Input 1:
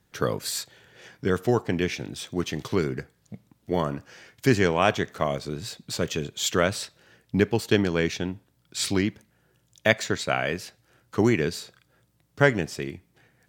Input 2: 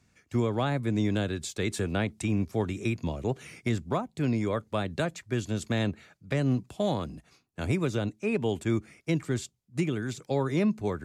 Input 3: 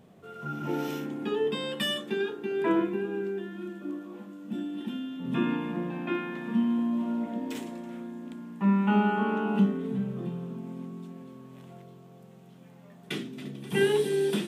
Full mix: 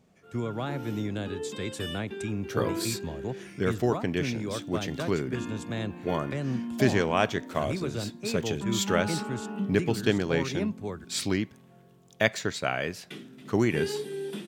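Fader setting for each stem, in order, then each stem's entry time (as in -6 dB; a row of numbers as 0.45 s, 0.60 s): -3.5 dB, -5.0 dB, -8.5 dB; 2.35 s, 0.00 s, 0.00 s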